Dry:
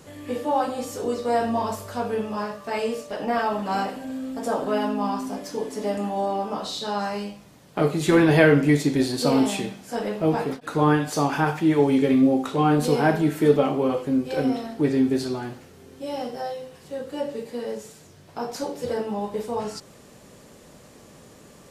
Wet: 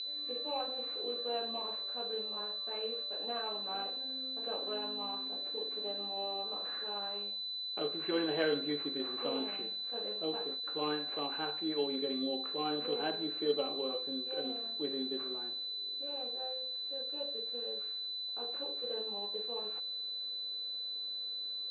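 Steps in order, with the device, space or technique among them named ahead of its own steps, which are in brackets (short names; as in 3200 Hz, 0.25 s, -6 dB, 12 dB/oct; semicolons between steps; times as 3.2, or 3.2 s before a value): toy sound module (decimation joined by straight lines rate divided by 8×; pulse-width modulation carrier 4000 Hz; speaker cabinet 540–4600 Hz, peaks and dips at 650 Hz -7 dB, 920 Hz -10 dB, 1300 Hz -5 dB, 1900 Hz -6 dB, 2800 Hz +8 dB, 4200 Hz -5 dB); gain -7.5 dB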